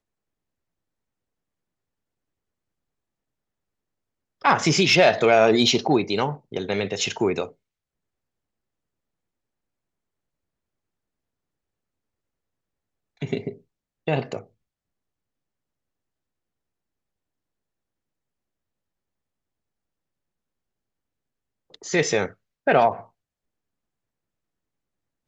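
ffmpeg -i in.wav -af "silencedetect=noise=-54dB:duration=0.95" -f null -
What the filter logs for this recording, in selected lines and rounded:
silence_start: 0.00
silence_end: 4.41 | silence_duration: 4.41
silence_start: 7.53
silence_end: 13.17 | silence_duration: 5.64
silence_start: 14.49
silence_end: 21.70 | silence_duration: 7.21
silence_start: 23.09
silence_end: 25.27 | silence_duration: 2.18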